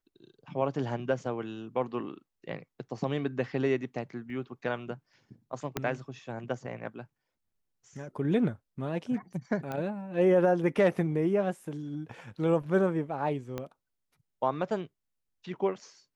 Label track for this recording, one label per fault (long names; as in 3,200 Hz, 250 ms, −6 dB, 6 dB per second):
4.300000	4.300000	drop-out 2.4 ms
5.770000	5.770000	click −14 dBFS
9.720000	9.720000	click −22 dBFS
13.580000	13.580000	click −21 dBFS